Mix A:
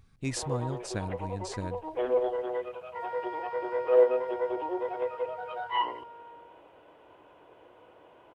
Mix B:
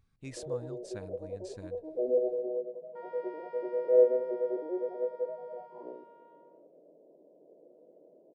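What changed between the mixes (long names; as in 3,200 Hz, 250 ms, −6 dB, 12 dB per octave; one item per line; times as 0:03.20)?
speech −11.0 dB
first sound: add Chebyshev band-pass filter 160–630 Hz, order 4
second sound −10.5 dB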